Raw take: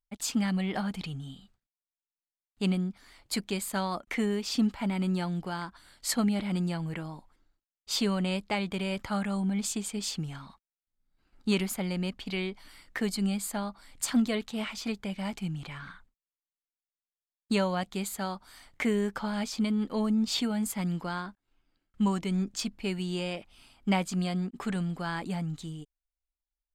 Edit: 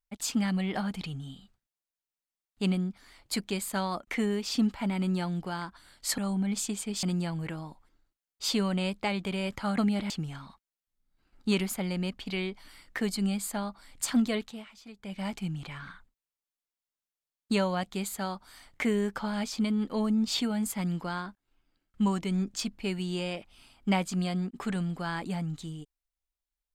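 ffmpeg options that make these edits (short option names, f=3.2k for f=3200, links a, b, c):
-filter_complex "[0:a]asplit=7[a][b][c][d][e][f][g];[a]atrim=end=6.182[h];[b]atrim=start=9.248:end=10.102[i];[c]atrim=start=6.498:end=9.252[j];[d]atrim=start=6.178:end=6.502[k];[e]atrim=start=10.098:end=14.64,asetpts=PTS-STARTPTS,afade=t=out:st=4.282:d=0.26:silence=0.177828[l];[f]atrim=start=14.64:end=14.96,asetpts=PTS-STARTPTS,volume=-15dB[m];[g]atrim=start=14.96,asetpts=PTS-STARTPTS,afade=t=in:d=0.26:silence=0.177828[n];[h][i]acrossfade=d=0.004:c1=hsin:c2=hsin[o];[o][j]acrossfade=d=0.004:c1=hsin:c2=hsin[p];[p][k]acrossfade=d=0.004:c1=hsin:c2=hsin[q];[l][m][n]concat=n=3:v=0:a=1[r];[q][r]acrossfade=d=0.004:c1=hsin:c2=hsin"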